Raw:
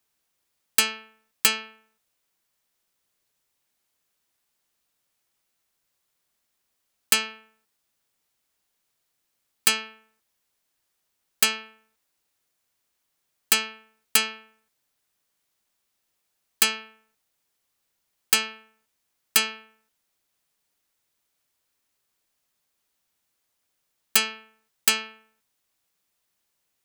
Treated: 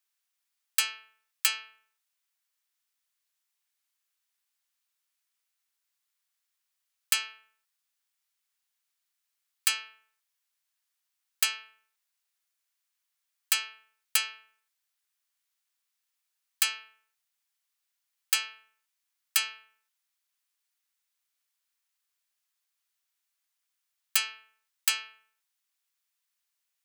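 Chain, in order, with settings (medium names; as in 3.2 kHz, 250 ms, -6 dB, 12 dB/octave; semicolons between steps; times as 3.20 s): high-pass 1.2 kHz 12 dB/octave; trim -5.5 dB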